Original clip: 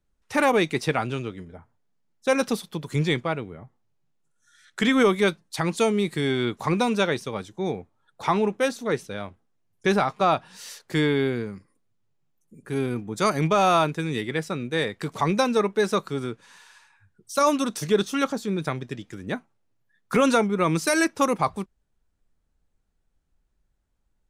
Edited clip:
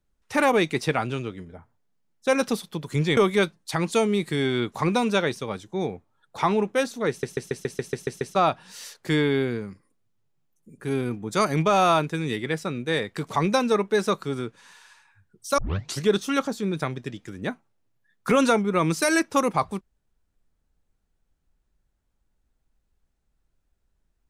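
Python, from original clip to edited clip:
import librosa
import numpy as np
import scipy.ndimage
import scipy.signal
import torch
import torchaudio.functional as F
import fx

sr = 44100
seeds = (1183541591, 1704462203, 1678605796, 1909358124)

y = fx.edit(x, sr, fx.cut(start_s=3.17, length_s=1.85),
    fx.stutter_over(start_s=8.94, slice_s=0.14, count=9),
    fx.tape_start(start_s=17.43, length_s=0.43), tone=tone)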